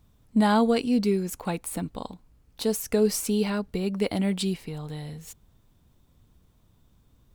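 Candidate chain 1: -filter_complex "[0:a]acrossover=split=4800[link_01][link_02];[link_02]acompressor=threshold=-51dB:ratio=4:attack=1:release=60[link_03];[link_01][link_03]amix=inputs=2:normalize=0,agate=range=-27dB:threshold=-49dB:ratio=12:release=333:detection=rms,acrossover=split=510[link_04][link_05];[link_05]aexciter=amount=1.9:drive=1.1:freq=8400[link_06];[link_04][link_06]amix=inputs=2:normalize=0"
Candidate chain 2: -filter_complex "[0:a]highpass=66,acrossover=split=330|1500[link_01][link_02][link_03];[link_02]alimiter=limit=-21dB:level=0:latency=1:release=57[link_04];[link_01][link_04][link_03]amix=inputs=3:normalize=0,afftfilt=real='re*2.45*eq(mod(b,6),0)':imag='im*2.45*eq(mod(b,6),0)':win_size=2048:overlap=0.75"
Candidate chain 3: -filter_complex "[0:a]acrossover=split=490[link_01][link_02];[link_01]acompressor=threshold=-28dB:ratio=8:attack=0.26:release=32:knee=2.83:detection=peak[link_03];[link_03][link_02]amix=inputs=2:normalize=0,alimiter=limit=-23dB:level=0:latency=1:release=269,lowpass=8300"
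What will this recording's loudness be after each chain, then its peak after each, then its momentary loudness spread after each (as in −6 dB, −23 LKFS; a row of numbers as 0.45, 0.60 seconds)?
−26.5, −32.0, −34.5 LKFS; −9.5, −14.5, −23.0 dBFS; 15, 20, 12 LU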